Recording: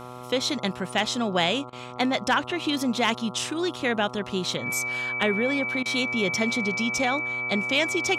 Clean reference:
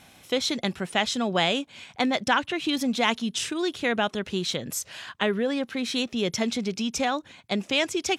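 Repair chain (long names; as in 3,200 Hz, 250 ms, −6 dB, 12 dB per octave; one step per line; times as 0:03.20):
clipped peaks rebuilt −11.5 dBFS
hum removal 124.1 Hz, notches 11
notch filter 2,300 Hz, Q 30
repair the gap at 0:01.70/0:05.83, 25 ms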